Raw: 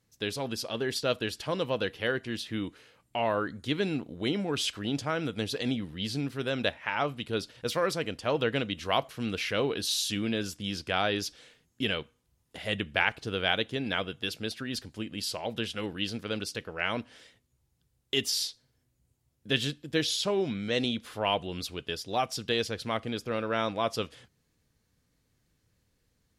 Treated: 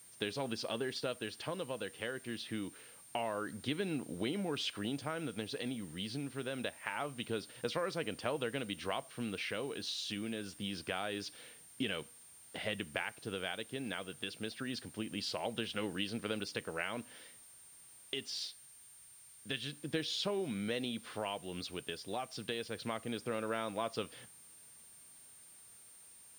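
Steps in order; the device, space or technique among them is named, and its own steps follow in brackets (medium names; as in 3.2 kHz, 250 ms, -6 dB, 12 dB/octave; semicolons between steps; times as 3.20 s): medium wave at night (band-pass 120–4300 Hz; compression, threshold -34 dBFS, peak gain reduction 13.5 dB; tremolo 0.25 Hz, depth 34%; whistle 9 kHz -57 dBFS; white noise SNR 23 dB); 18.47–19.73 s: peaking EQ 360 Hz -6 dB 2.9 oct; trim +1 dB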